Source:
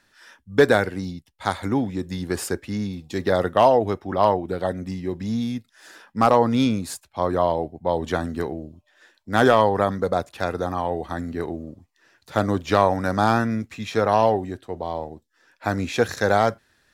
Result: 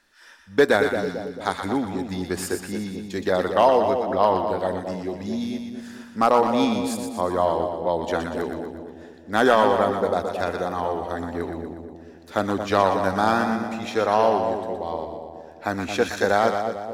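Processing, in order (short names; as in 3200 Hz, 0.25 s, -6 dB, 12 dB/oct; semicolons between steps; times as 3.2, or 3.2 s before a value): bell 120 Hz -13 dB 0.65 oct; split-band echo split 800 Hz, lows 0.222 s, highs 0.12 s, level -6 dB; gain -1 dB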